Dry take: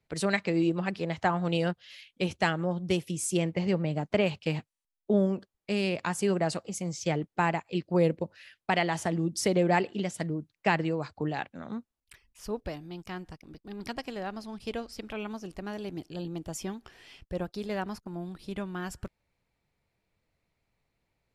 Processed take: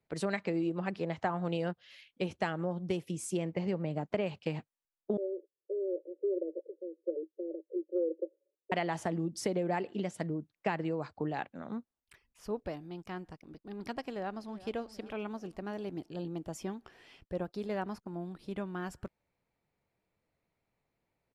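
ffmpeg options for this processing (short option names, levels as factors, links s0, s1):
-filter_complex "[0:a]asettb=1/sr,asplit=3[s0][s1][s2];[s0]atrim=end=5.174[s3];[s1]atrim=start=5.17:end=8.72,asetpts=PTS-STARTPTS,afade=t=in:d=0.004:c=qsin,afade=t=out:st=3.546:d=0.004:c=qsin,asuperpass=centerf=430:order=20:qfactor=1.6[s4];[s2]atrim=start=8.716[s5];[s3][s4]acrossfade=d=0.004:c1=hsin:c2=qsin[s6];[s6][s5]acrossfade=d=0.004:c1=qsin:c2=hsin,asplit=2[s7][s8];[s8]afade=t=in:st=14.09:d=0.01,afade=t=out:st=14.72:d=0.01,aecho=0:1:390|780|1170|1560:0.141254|0.0706269|0.0353134|0.0176567[s9];[s7][s9]amix=inputs=2:normalize=0,highshelf=f=2000:g=-9.5,acompressor=threshold=0.0447:ratio=6,lowshelf=f=110:g=-11"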